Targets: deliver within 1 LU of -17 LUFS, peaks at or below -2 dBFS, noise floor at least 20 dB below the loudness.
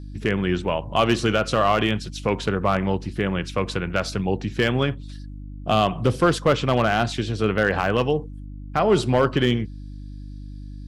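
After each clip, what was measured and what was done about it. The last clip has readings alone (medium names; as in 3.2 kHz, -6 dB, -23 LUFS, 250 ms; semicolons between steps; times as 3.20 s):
clipped samples 0.6%; clipping level -9.5 dBFS; hum 50 Hz; highest harmonic 300 Hz; hum level -34 dBFS; loudness -22.5 LUFS; peak level -9.5 dBFS; loudness target -17.0 LUFS
-> clip repair -9.5 dBFS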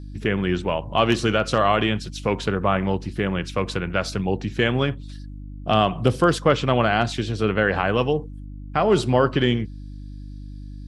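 clipped samples 0.0%; hum 50 Hz; highest harmonic 300 Hz; hum level -33 dBFS
-> de-hum 50 Hz, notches 6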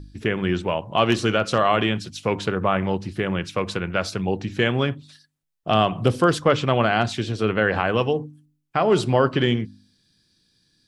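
hum not found; loudness -22.5 LUFS; peak level -4.0 dBFS; loudness target -17.0 LUFS
-> trim +5.5 dB; peak limiter -2 dBFS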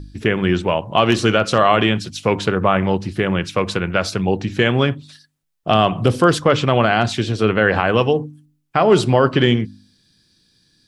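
loudness -17.5 LUFS; peak level -2.0 dBFS; noise floor -64 dBFS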